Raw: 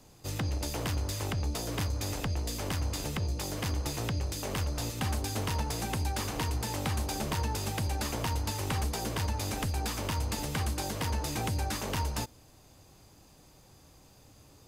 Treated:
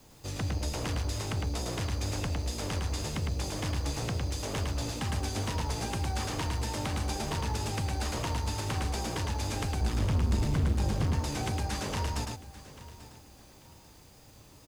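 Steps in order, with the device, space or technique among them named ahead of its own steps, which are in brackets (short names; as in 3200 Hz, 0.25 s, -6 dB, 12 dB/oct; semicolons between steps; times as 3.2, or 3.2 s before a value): 9.81–11.13 tone controls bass +13 dB, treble -3 dB; compact cassette (soft clip -25.5 dBFS, distortion -8 dB; LPF 9200 Hz 12 dB/oct; wow and flutter; white noise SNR 32 dB); echo 0.107 s -3.5 dB; feedback echo 0.84 s, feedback 33%, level -17 dB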